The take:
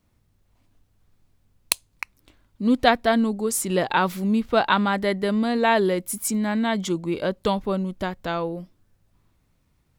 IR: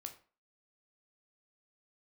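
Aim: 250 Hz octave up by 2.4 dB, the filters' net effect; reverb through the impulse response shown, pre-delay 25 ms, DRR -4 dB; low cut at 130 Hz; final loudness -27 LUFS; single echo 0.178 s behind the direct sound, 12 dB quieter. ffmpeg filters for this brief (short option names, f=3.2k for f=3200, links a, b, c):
-filter_complex "[0:a]highpass=130,equalizer=f=250:t=o:g=3.5,aecho=1:1:178:0.251,asplit=2[a][b];[1:a]atrim=start_sample=2205,adelay=25[c];[b][c]afir=irnorm=-1:irlink=0,volume=8dB[d];[a][d]amix=inputs=2:normalize=0,volume=-10.5dB"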